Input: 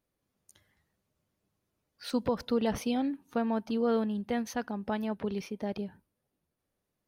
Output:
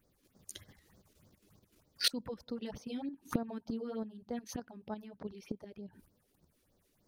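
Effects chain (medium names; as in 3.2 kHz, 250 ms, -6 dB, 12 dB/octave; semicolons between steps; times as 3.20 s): inverted gate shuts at -31 dBFS, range -24 dB; level held to a coarse grid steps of 9 dB; phase shifter stages 4, 3.3 Hz, lowest notch 110–2800 Hz; trim +17.5 dB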